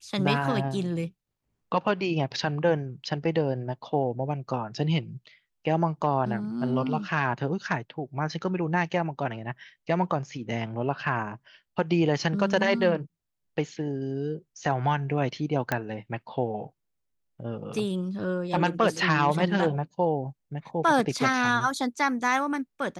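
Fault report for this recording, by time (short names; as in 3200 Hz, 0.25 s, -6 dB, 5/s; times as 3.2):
15.72 pop -11 dBFS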